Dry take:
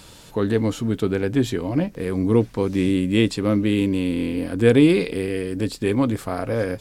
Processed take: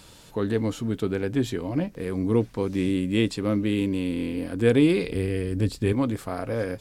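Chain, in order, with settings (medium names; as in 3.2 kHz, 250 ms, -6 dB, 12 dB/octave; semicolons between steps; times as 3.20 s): 5.04–5.93 s: peaking EQ 65 Hz +14 dB 1.9 oct; trim -4.5 dB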